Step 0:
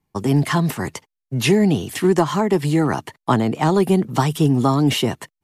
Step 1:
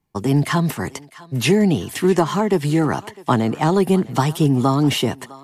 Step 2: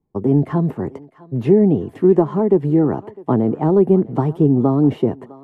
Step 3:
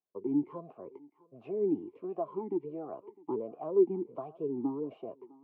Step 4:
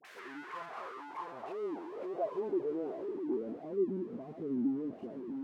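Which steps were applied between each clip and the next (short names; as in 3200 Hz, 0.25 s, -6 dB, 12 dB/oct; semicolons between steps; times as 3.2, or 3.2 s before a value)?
thinning echo 0.655 s, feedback 46%, high-pass 540 Hz, level -18 dB
EQ curve 140 Hz 0 dB, 430 Hz +5 dB, 5700 Hz -30 dB
vowel sweep a-u 1.4 Hz; gain -8 dB
zero-crossing step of -30 dBFS; dispersion highs, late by 49 ms, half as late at 990 Hz; band-pass sweep 1900 Hz -> 230 Hz, 0.01–3.76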